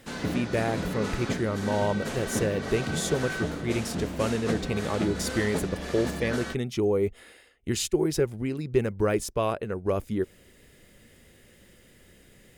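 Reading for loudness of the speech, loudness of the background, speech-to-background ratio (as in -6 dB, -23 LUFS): -29.0 LUFS, -33.0 LUFS, 4.0 dB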